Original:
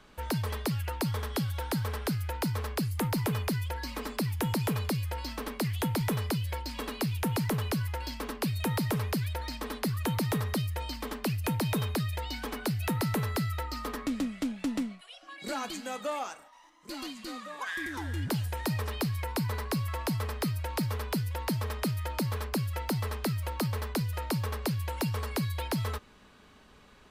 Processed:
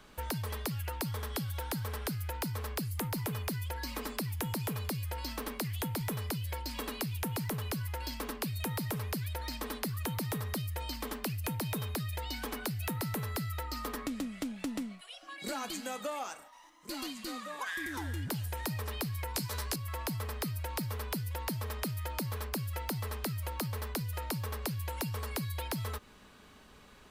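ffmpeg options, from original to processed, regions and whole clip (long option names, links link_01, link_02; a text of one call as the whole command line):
ffmpeg -i in.wav -filter_complex "[0:a]asettb=1/sr,asplit=3[link_01][link_02][link_03];[link_01]atrim=end=19.344[link_04];[link_02]atrim=start=19.34:end=19.76,asetpts=PTS-STARTPTS,afade=type=in:duration=0.004:curve=qsin,afade=type=out:start_time=0.416:duration=0.004:curve=qsin,equalizer=frequency=6500:width=0.55:gain=10,asplit=2[link_05][link_06];[link_06]adelay=15,volume=-3dB[link_07];[link_05][link_07]amix=inputs=2:normalize=0,atrim=end_sample=18522[link_08];[link_03]atrim=start=19.756[link_09];[link_04][link_08]acrossfade=duration=0.004:curve1=hsin:curve2=qsin[link_10];[link_10][link_09]acrossfade=duration=0.004:curve1=qsin:curve2=hsin,highshelf=frequency=9600:gain=9,acompressor=threshold=-34dB:ratio=4" out.wav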